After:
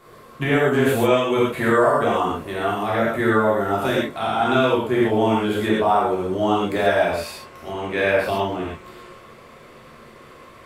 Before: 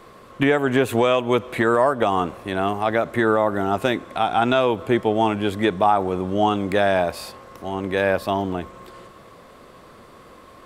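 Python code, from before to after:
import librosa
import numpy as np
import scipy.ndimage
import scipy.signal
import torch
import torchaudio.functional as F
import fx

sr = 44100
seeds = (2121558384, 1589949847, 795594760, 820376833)

y = fx.peak_eq(x, sr, hz=fx.steps((0.0, 13000.0), (7.0, 2400.0)), db=6.5, octaves=0.62)
y = fx.rev_gated(y, sr, seeds[0], gate_ms=160, shape='flat', drr_db=-7.0)
y = y * 10.0 ** (-7.0 / 20.0)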